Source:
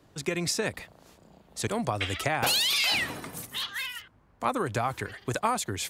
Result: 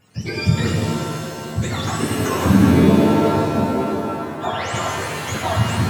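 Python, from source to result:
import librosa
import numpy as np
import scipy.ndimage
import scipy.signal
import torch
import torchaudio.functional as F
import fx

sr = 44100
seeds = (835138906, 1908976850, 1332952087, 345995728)

y = fx.octave_mirror(x, sr, pivot_hz=910.0)
y = fx.rev_shimmer(y, sr, seeds[0], rt60_s=2.4, semitones=7, shimmer_db=-2, drr_db=0.0)
y = y * librosa.db_to_amplitude(4.5)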